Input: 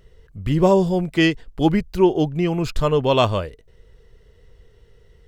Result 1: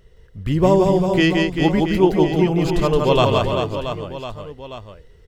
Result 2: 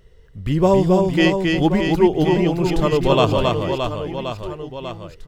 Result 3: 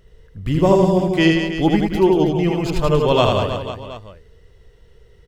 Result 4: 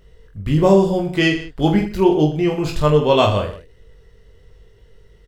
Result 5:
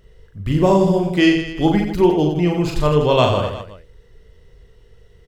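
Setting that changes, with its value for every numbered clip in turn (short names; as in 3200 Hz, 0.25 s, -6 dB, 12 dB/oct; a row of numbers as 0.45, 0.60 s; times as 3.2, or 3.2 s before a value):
reverse bouncing-ball echo, first gap: 170, 270, 80, 20, 40 ms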